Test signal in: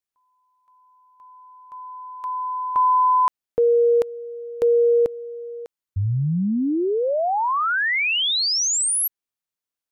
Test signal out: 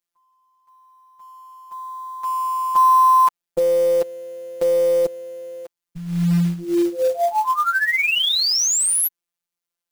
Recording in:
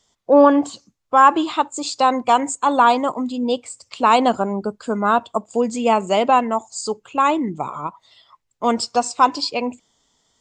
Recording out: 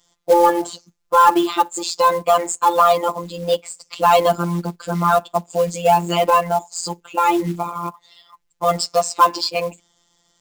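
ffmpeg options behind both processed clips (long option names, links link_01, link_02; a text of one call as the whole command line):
ffmpeg -i in.wav -af "afftfilt=real='hypot(re,im)*cos(PI*b)':imag='0':win_size=1024:overlap=0.75,acontrast=42,acrusher=bits=5:mode=log:mix=0:aa=0.000001" out.wav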